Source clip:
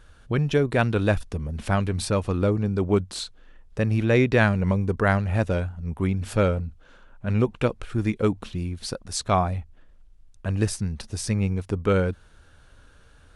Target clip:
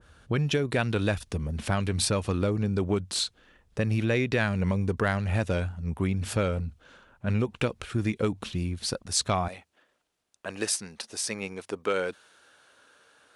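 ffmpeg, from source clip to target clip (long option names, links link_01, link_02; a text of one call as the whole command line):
ffmpeg -i in.wav -af "asetnsamples=nb_out_samples=441:pad=0,asendcmd='9.48 highpass f 410',highpass=62,acompressor=threshold=-22dB:ratio=6,asoftclip=type=tanh:threshold=-11dB,adynamicequalizer=threshold=0.01:dfrequency=1800:dqfactor=0.7:tfrequency=1800:tqfactor=0.7:attack=5:release=100:ratio=0.375:range=3:mode=boostabove:tftype=highshelf" out.wav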